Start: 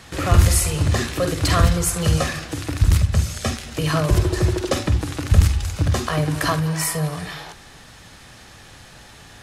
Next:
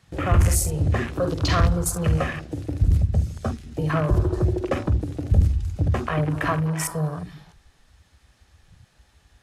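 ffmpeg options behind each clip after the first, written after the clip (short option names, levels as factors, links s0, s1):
-af "acontrast=35,afwtdn=0.0631,volume=0.447"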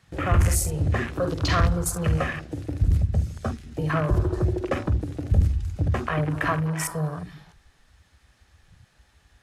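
-af "equalizer=f=1700:w=1.2:g=3,volume=0.794"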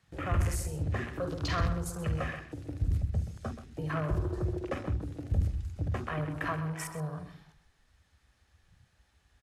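-filter_complex "[0:a]acrossover=split=590|5400[s0][s1][s2];[s2]alimiter=limit=0.0708:level=0:latency=1:release=378[s3];[s0][s1][s3]amix=inputs=3:normalize=0,asplit=2[s4][s5];[s5]adelay=128.3,volume=0.282,highshelf=f=4000:g=-2.89[s6];[s4][s6]amix=inputs=2:normalize=0,volume=0.355"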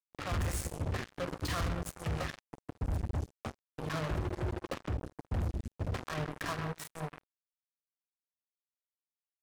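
-af "acrusher=bits=4:mix=0:aa=0.5,volume=28.2,asoftclip=hard,volume=0.0355"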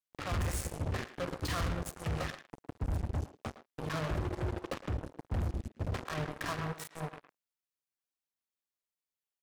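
-filter_complex "[0:a]asplit=2[s0][s1];[s1]adelay=110,highpass=300,lowpass=3400,asoftclip=type=hard:threshold=0.0141,volume=0.316[s2];[s0][s2]amix=inputs=2:normalize=0"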